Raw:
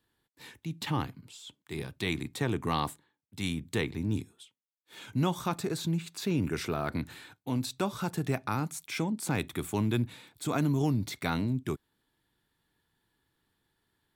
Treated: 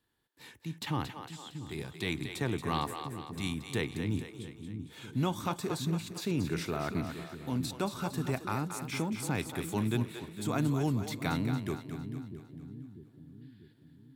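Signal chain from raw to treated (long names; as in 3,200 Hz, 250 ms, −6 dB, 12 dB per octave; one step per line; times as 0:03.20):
gain on a spectral selection 0:13.42–0:13.73, 1,400–5,200 Hz +12 dB
echo with a time of its own for lows and highs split 350 Hz, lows 643 ms, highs 228 ms, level −8 dB
level −2.5 dB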